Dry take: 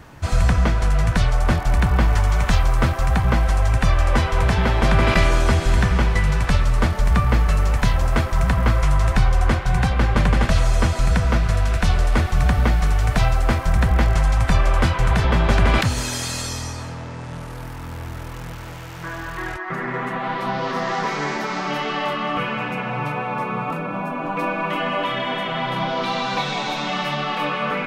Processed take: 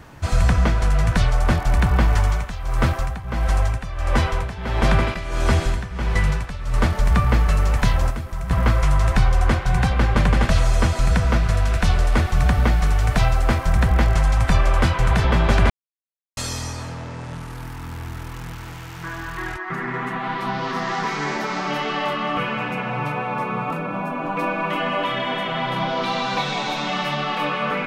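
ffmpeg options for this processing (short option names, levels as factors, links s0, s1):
-filter_complex "[0:a]asettb=1/sr,asplit=3[s0][s1][s2];[s0]atrim=end=2.224[s3];[s1]atrim=start=2.22:end=6.74,asetpts=PTS-STARTPTS,afade=t=in:d=0.004:c=qsin,afade=t=out:st=4.516:d=0.004:c=qsin,tremolo=f=1.5:d=0.81[s4];[s2]atrim=start=6.736[s5];[s3][s4]acrossfade=d=0.004:c1=hsin:c2=qsin[s6];[s6][s5]acrossfade=d=0.004:c1=qsin:c2=hsin,asettb=1/sr,asplit=3[s7][s8][s9];[s7]atrim=end=8.104[s10];[s8]atrim=start=8.1:end=8.51,asetpts=PTS-STARTPTS,afade=t=in:d=0.004:c=qsin,afade=t=out:st=0.406:d=0.004:c=qsin,acrossover=split=290|3800|7700[s11][s12][s13][s14];[s11]acompressor=threshold=0.0447:ratio=3[s15];[s12]acompressor=threshold=0.01:ratio=3[s16];[s13]acompressor=threshold=0.00141:ratio=3[s17];[s14]acompressor=threshold=0.00178:ratio=3[s18];[s15][s16][s17][s18]amix=inputs=4:normalize=0[s19];[s9]atrim=start=8.506[s20];[s10][s19]acrossfade=d=0.004:c1=hsin:c2=qsin[s21];[s21][s20]acrossfade=d=0.004:c1=qsin:c2=hsin,asettb=1/sr,asplit=3[s22][s23][s24];[s22]atrim=end=17.344[s25];[s23]atrim=start=17.34:end=21.27,asetpts=PTS-STARTPTS,afade=t=in:d=0.004:c=qsin,afade=t=out:st=3.926:d=0.004:c=qsin,equalizer=f=560:t=o:w=0.4:g=-10[s26];[s24]atrim=start=21.266[s27];[s25][s26]acrossfade=d=0.004:c1=hsin:c2=qsin[s28];[s28][s27]acrossfade=d=0.004:c1=qsin:c2=hsin,asplit=3[s29][s30][s31];[s29]atrim=end=15.7,asetpts=PTS-STARTPTS,afade=t=out:st=15.696:d=0.004:c=hsin[s32];[s30]atrim=start=15.7:end=16.37,asetpts=PTS-STARTPTS,volume=0[s33];[s31]atrim=start=16.37,asetpts=PTS-STARTPTS,afade=t=in:d=0.004:c=hsin[s34];[s32][s33][s34]concat=n=3:v=0:a=1"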